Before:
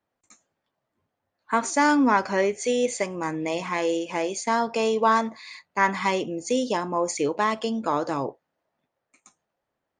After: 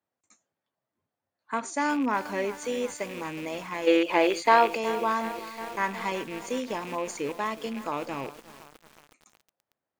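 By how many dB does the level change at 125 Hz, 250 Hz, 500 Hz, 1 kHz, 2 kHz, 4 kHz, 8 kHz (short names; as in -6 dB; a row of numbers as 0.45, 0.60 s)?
-6.5, -4.5, -3.0, -3.0, -3.0, -2.5, -8.0 dB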